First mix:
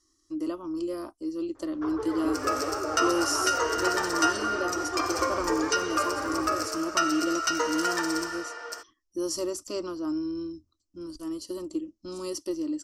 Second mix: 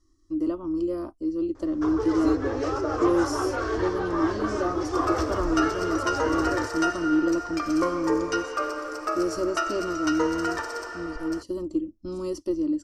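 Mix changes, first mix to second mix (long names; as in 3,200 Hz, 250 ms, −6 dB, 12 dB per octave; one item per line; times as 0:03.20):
first sound: remove head-to-tape spacing loss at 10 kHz 36 dB
second sound: entry +2.60 s
master: add spectral tilt −3 dB per octave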